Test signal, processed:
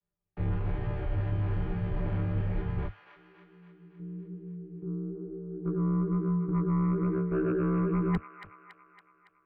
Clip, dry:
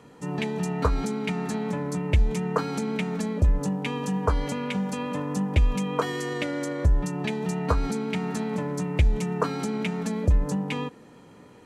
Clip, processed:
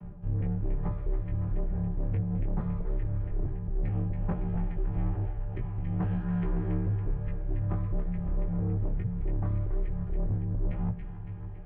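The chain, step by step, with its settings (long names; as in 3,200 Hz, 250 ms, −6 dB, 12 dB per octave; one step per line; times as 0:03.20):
channel vocoder with a chord as carrier bare fifth, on C#3
low-pass filter 2,800 Hz 24 dB per octave
tilt shelving filter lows +7 dB, about 760 Hz
reversed playback
downward compressor 6 to 1, threshold −33 dBFS
reversed playback
chorus effect 1.1 Hz, delay 17 ms, depth 5 ms
harmonic generator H 5 −12 dB, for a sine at −25.5 dBFS
frequency shifter −240 Hz
delay with a high-pass on its return 280 ms, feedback 57%, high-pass 1,400 Hz, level −4.5 dB
level +5.5 dB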